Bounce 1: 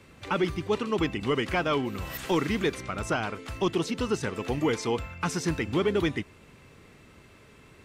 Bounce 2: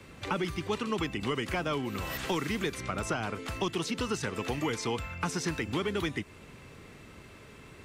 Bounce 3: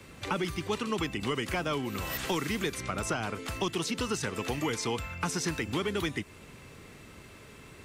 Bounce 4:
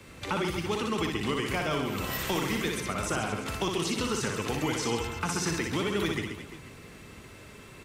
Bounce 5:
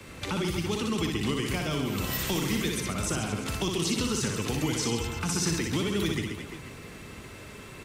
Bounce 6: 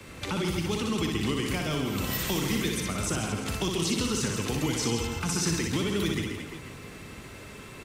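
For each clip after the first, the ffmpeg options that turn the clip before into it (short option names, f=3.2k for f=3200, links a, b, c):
-filter_complex "[0:a]acrossover=split=230|910|6500[a][b][c][d];[a]acompressor=threshold=-40dB:ratio=4[e];[b]acompressor=threshold=-38dB:ratio=4[f];[c]acompressor=threshold=-38dB:ratio=4[g];[d]acompressor=threshold=-47dB:ratio=4[h];[e][f][g][h]amix=inputs=4:normalize=0,volume=3dB"
-af "highshelf=f=5.8k:g=6"
-af "aecho=1:1:60|135|228.8|345.9|492.4:0.631|0.398|0.251|0.158|0.1"
-filter_complex "[0:a]acrossover=split=330|3000[a][b][c];[b]acompressor=threshold=-43dB:ratio=2.5[d];[a][d][c]amix=inputs=3:normalize=0,volume=4dB"
-af "aecho=1:1:165:0.282"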